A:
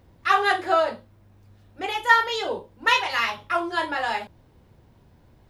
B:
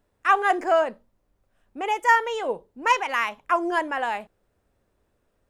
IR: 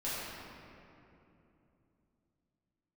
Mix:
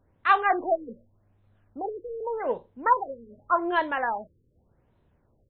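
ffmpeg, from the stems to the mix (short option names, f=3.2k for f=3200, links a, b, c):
-filter_complex "[0:a]volume=-12dB[a];[1:a]adynamicsmooth=sensitivity=6:basefreq=3k,adelay=2.7,volume=-1dB[b];[a][b]amix=inputs=2:normalize=0,afftfilt=real='re*lt(b*sr/1024,510*pow(4300/510,0.5+0.5*sin(2*PI*0.85*pts/sr)))':imag='im*lt(b*sr/1024,510*pow(4300/510,0.5+0.5*sin(2*PI*0.85*pts/sr)))':win_size=1024:overlap=0.75"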